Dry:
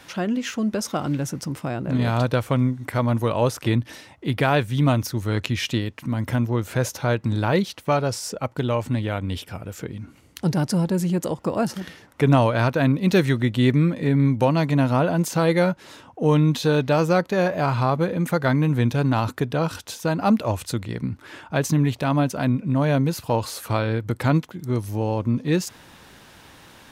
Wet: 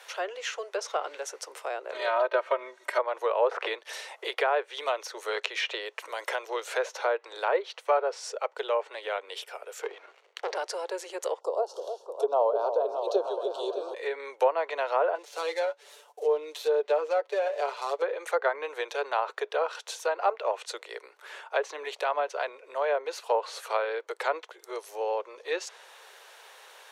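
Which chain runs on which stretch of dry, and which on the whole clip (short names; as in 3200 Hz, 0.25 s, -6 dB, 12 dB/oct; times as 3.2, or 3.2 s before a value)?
1.94–2.99 notch 800 Hz, Q 10 + comb 3.2 ms, depth 95%
3.51–7.25 high shelf 10000 Hz +3.5 dB + three-band squash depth 70%
9.82–10.56 air absorption 180 m + sample leveller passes 2
11.4–13.94 Butterworth band-stop 2000 Hz, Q 0.6 + repeats that get brighter 0.306 s, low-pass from 750 Hz, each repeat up 2 oct, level -6 dB
15.15–18.02 switching dead time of 0.066 ms + bell 1300 Hz -10 dB 2.4 oct + comb 6.9 ms, depth 68%
whole clip: steep high-pass 410 Hz 72 dB/oct; notch 5000 Hz, Q 18; treble ducked by the level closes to 1600 Hz, closed at -19.5 dBFS; gain -2 dB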